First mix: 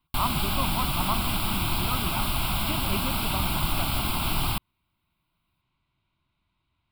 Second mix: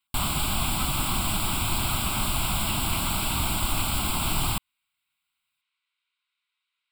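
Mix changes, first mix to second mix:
speech: add inverse Chebyshev high-pass filter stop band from 240 Hz, stop band 80 dB
master: add parametric band 7,700 Hz +13 dB 0.37 octaves

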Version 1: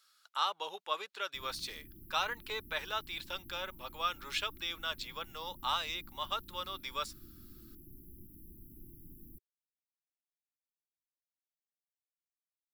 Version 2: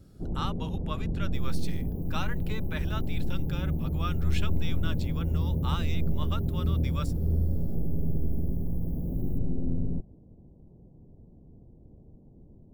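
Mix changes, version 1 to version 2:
first sound: unmuted
master: add octave-band graphic EQ 125/1,000/4,000 Hz +4/−3/−6 dB

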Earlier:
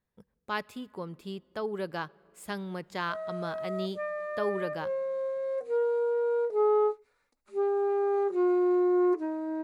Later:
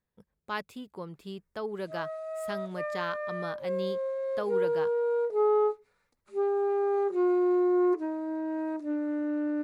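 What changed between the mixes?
background: entry −1.20 s
reverb: off

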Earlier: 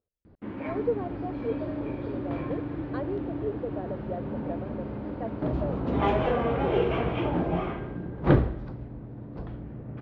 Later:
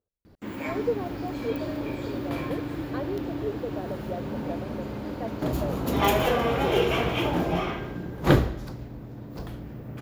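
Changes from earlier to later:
background: remove head-to-tape spacing loss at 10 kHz 24 dB
master: remove high-frequency loss of the air 180 metres

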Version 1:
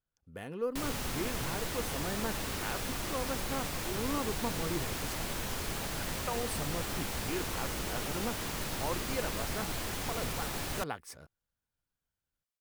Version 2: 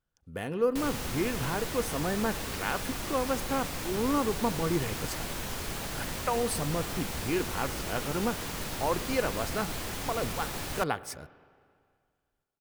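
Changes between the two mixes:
speech +6.0 dB
reverb: on, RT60 2.1 s

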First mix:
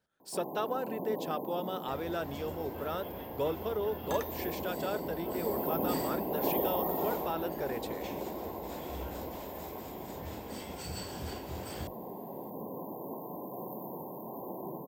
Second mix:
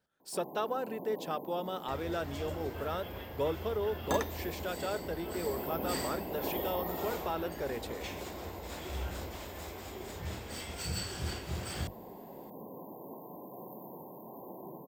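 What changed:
first sound −5.5 dB
second sound +5.0 dB

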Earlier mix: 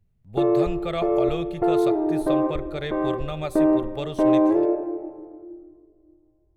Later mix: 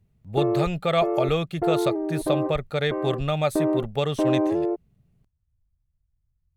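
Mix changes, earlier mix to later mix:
speech +7.0 dB
reverb: off

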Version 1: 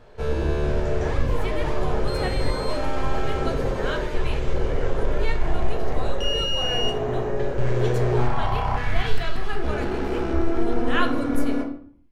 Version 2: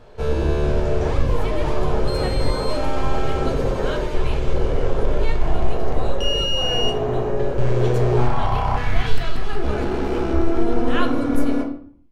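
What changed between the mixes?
first sound +3.5 dB
master: add parametric band 1,800 Hz −3.5 dB 0.61 octaves

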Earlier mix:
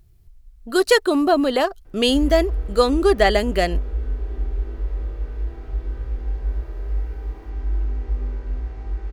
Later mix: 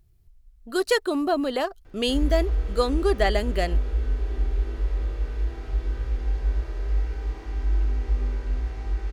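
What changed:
speech −6.5 dB
background: add high-shelf EQ 2,000 Hz +10 dB

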